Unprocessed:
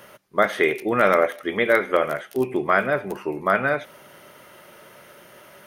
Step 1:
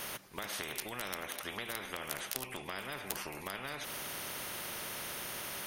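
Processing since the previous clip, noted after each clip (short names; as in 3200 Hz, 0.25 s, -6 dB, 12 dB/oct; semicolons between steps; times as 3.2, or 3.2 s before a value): compressor, threshold -26 dBFS, peak gain reduction 13 dB; spectral compressor 4:1; gain +3 dB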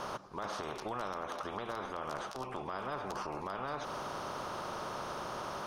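EQ curve 250 Hz 0 dB, 1200 Hz +6 dB, 2000 Hz -13 dB, 5500 Hz -7 dB, 13000 Hz -29 dB; limiter -32 dBFS, peak gain reduction 7.5 dB; gain +4 dB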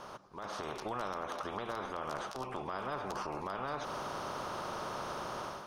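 AGC gain up to 8.5 dB; gain -8 dB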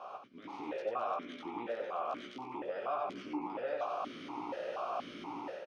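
doubler 17 ms -4 dB; echo 92 ms -5.5 dB; vowel sequencer 4.2 Hz; gain +9 dB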